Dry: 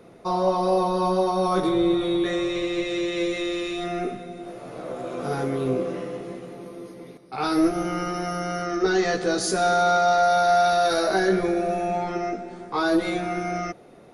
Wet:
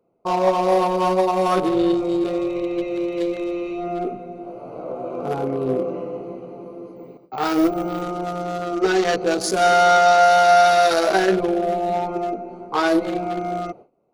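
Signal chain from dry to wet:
adaptive Wiener filter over 25 samples
noise gate with hold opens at −38 dBFS
low-shelf EQ 370 Hz −10.5 dB
0:06.96–0:08.02: bad sample-rate conversion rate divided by 2×, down filtered, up hold
level +8.5 dB

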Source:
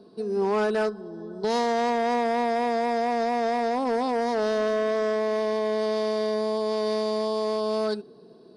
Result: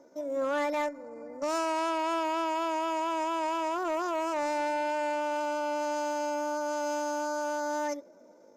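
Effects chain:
pitch shifter +5.5 semitones
level −5.5 dB

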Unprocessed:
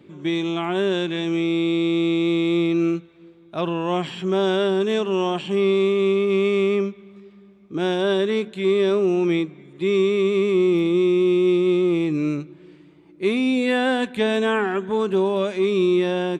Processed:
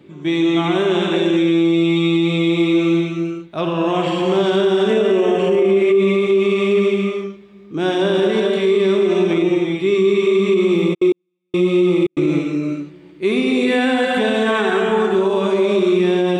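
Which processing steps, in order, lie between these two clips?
0:04.90–0:05.95: graphic EQ with 10 bands 125 Hz −11 dB, 250 Hz +7 dB, 500 Hz +7 dB, 1,000 Hz −7 dB, 2,000 Hz +7 dB, 4,000 Hz −10 dB
reverb whose tail is shaped and stops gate 490 ms flat, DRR −1.5 dB
0:10.93–0:12.21: gate pattern "xxxxx.x...." 143 BPM −60 dB
boost into a limiter +9.5 dB
level −7 dB

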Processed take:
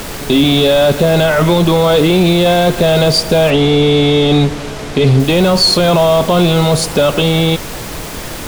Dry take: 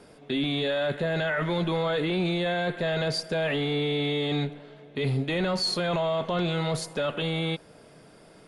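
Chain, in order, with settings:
parametric band 1,800 Hz −13.5 dB 0.48 octaves
in parallel at +1 dB: downward compressor, threshold −32 dBFS, peak gain reduction 9 dB
on the sum: background noise pink −39 dBFS
0:03.50–0:05.20: high-frequency loss of the air 56 metres
boost into a limiter +15 dB
level −1 dB

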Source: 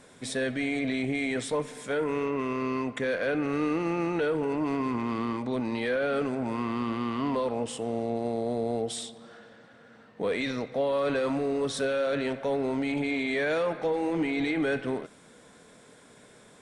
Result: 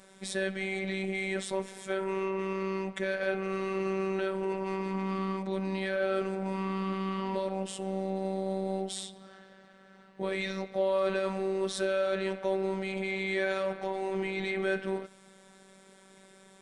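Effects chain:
phases set to zero 192 Hz

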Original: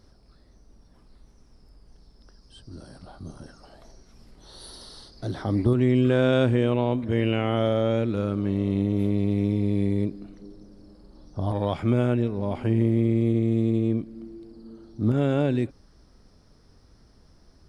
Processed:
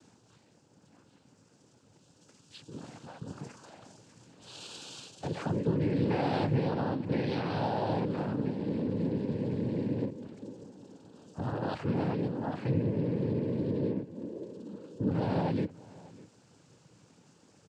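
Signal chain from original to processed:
downward compressor 2 to 1, threshold −31 dBFS, peak gain reduction 8.5 dB
cochlear-implant simulation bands 8
single-tap delay 598 ms −21.5 dB

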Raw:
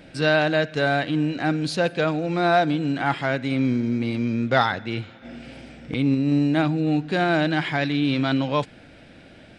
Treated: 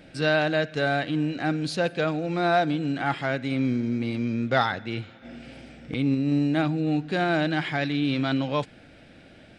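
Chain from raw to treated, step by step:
notch filter 980 Hz, Q 14
level −3 dB

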